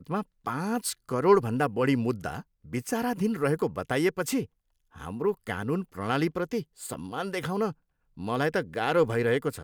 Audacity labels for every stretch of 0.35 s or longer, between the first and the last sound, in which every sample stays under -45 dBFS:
4.460000	4.940000	silence
7.720000	8.170000	silence